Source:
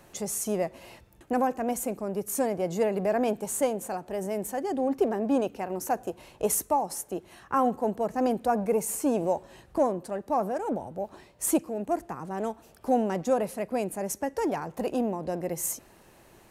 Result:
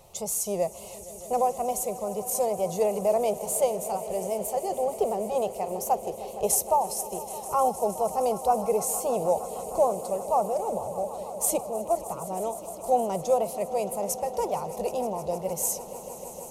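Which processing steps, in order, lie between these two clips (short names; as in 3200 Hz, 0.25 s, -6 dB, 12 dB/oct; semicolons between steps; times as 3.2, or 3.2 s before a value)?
fixed phaser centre 680 Hz, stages 4; wow and flutter 63 cents; swelling echo 0.155 s, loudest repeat 5, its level -18 dB; gain +3.5 dB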